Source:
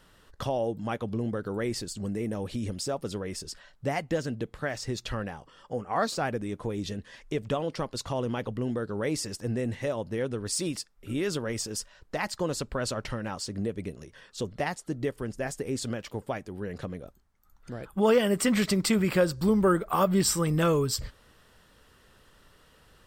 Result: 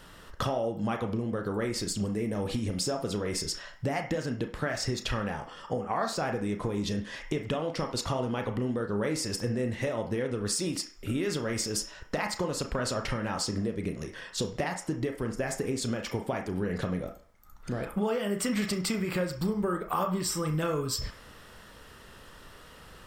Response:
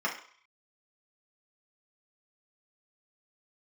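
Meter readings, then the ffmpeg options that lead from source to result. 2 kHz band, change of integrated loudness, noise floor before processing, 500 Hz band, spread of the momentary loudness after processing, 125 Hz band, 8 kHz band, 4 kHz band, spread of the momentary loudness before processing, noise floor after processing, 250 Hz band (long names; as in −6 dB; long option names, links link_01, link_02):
−0.5 dB, −1.5 dB, −60 dBFS, −2.5 dB, 8 LU, −0.5 dB, −0.5 dB, +0.5 dB, 13 LU, −51 dBFS, −1.5 dB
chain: -filter_complex "[0:a]acompressor=threshold=-35dB:ratio=10,asplit=2[link_01][link_02];[1:a]atrim=start_sample=2205,adelay=31[link_03];[link_02][link_03]afir=irnorm=-1:irlink=0,volume=-12.5dB[link_04];[link_01][link_04]amix=inputs=2:normalize=0,volume=7.5dB"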